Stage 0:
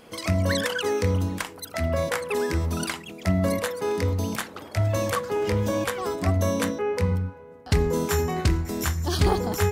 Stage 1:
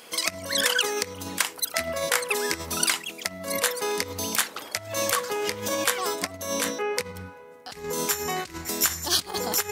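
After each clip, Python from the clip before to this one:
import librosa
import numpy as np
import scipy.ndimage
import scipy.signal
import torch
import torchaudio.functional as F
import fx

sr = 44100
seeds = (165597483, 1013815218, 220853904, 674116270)

y = fx.over_compress(x, sr, threshold_db=-25.0, ratio=-0.5)
y = fx.highpass(y, sr, hz=570.0, slope=6)
y = fx.high_shelf(y, sr, hz=2500.0, db=10.0)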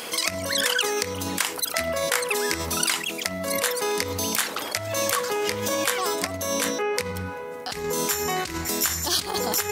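y = fx.env_flatten(x, sr, amount_pct=50)
y = F.gain(torch.from_numpy(y), -2.0).numpy()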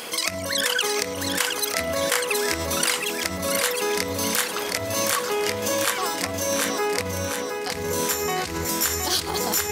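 y = fx.dmg_crackle(x, sr, seeds[0], per_s=110.0, level_db=-55.0)
y = fx.echo_feedback(y, sr, ms=717, feedback_pct=51, wet_db=-5.5)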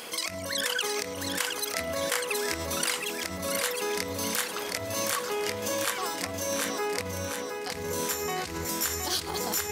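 y = fx.end_taper(x, sr, db_per_s=260.0)
y = F.gain(torch.from_numpy(y), -6.0).numpy()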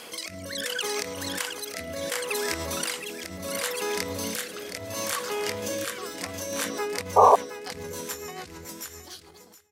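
y = fx.fade_out_tail(x, sr, length_s=2.61)
y = fx.rotary_switch(y, sr, hz=0.7, then_hz=7.0, switch_at_s=6.02)
y = fx.spec_paint(y, sr, seeds[1], shape='noise', start_s=7.16, length_s=0.2, low_hz=400.0, high_hz=1200.0, level_db=-16.0)
y = F.gain(torch.from_numpy(y), 1.5).numpy()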